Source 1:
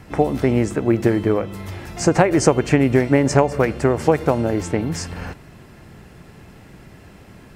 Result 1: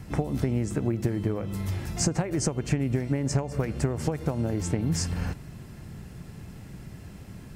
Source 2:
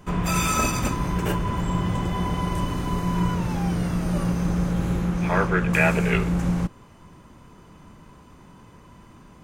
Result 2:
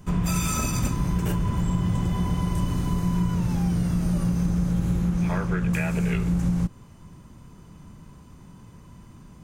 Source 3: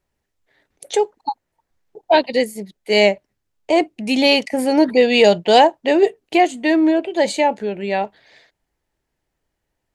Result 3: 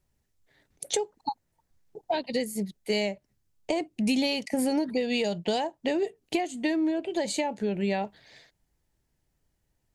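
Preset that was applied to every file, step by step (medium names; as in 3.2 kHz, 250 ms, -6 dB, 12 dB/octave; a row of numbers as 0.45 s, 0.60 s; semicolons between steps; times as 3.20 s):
peaking EQ 150 Hz +2 dB 1.4 oct; compression 16:1, threshold -20 dBFS; tone controls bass +8 dB, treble +7 dB; peak normalisation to -12 dBFS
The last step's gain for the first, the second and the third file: -6.0 dB, -5.0 dB, -5.5 dB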